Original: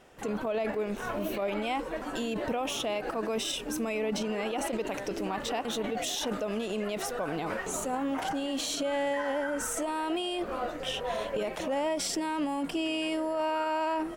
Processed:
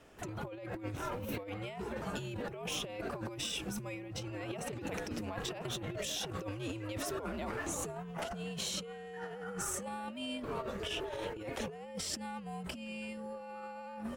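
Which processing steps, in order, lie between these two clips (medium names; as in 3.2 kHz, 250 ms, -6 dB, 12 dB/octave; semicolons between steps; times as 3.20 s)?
frequency shift -100 Hz; compressor with a negative ratio -34 dBFS, ratio -0.5; trim -5.5 dB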